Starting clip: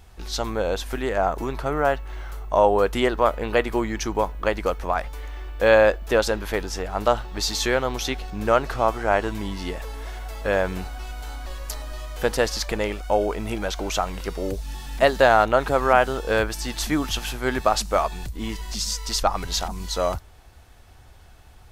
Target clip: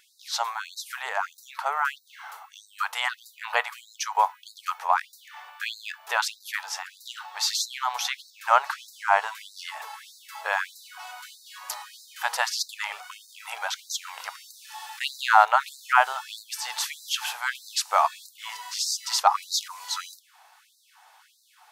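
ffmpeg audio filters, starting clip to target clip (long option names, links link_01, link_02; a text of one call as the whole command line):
ffmpeg -i in.wav -af "lowshelf=frequency=650:width_type=q:width=3:gain=-9.5,afftfilt=real='re*gte(b*sr/1024,400*pow(3800/400,0.5+0.5*sin(2*PI*1.6*pts/sr)))':imag='im*gte(b*sr/1024,400*pow(3800/400,0.5+0.5*sin(2*PI*1.6*pts/sr)))':win_size=1024:overlap=0.75" out.wav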